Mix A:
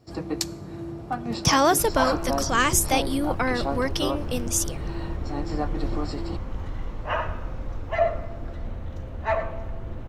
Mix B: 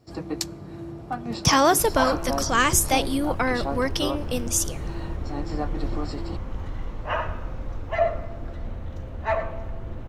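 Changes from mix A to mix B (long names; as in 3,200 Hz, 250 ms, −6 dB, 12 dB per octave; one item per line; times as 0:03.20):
speech: send on
first sound: send −11.5 dB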